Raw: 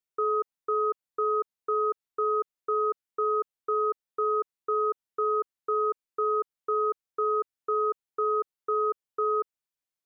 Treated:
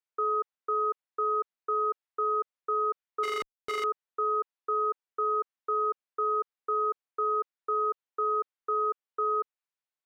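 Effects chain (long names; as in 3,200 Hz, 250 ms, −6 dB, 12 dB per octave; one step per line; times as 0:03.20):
0:03.23–0:03.84: comparator with hysteresis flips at −39.5 dBFS
resonant band-pass 1,300 Hz, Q 0.5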